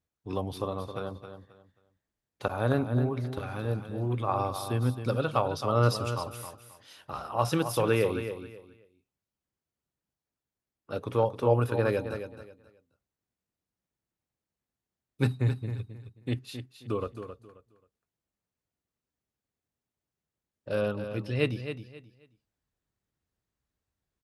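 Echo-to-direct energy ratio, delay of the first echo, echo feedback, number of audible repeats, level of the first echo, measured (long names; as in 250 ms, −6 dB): −9.0 dB, 267 ms, 24%, 3, −9.5 dB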